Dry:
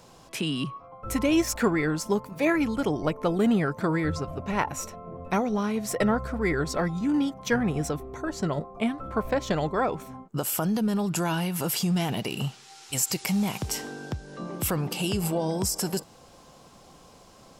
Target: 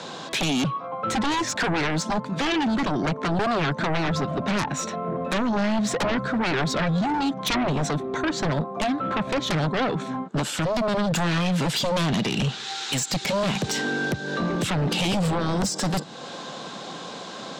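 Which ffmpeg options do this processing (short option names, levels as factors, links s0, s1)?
-filter_complex "[0:a]acrossover=split=230[s0][s1];[s1]acompressor=threshold=0.00631:ratio=2[s2];[s0][s2]amix=inputs=2:normalize=0,highpass=f=160:w=0.5412,highpass=f=160:w=1.3066,equalizer=f=1600:t=q:w=4:g=7,equalizer=f=3700:t=q:w=4:g=10,equalizer=f=5400:t=q:w=4:g=-4,lowpass=f=7000:w=0.5412,lowpass=f=7000:w=1.3066,aeval=exprs='0.112*sin(PI/2*4.47*val(0)/0.112)':c=same,volume=0.891"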